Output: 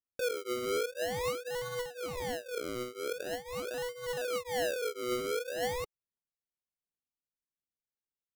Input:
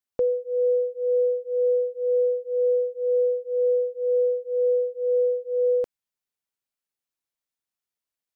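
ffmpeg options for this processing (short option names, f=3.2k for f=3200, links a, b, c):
-filter_complex "[0:a]asoftclip=type=tanh:threshold=-28dB,adynamicsmooth=sensitivity=3.5:basefreq=620,aphaser=in_gain=1:out_gain=1:delay=2.7:decay=0.36:speed=1.3:type=sinusoidal,asettb=1/sr,asplit=3[a][b][c];[a]atrim=end=1.474[d];[b]atrim=start=1.47:end=4.17,asetpts=PTS-STARTPTS,afade=t=in:d=0.004:c=qsin,afade=t=out:st=2.696:d=0.004:c=qsin,asplit=2[e][f];[f]adelay=13,volume=-5dB[g];[e][g]amix=inputs=2:normalize=0,atrim=end_sample=119070[h];[c]atrim=start=4.166[i];[d][h]acrossfade=d=0.004:c1=hsin:c2=qsin[j];[j][i]acrossfade=d=0.004:c1=qsin:c2=hsin,acrusher=samples=34:mix=1:aa=0.000001:lfo=1:lforange=34:lforate=0.44,volume=-4.5dB"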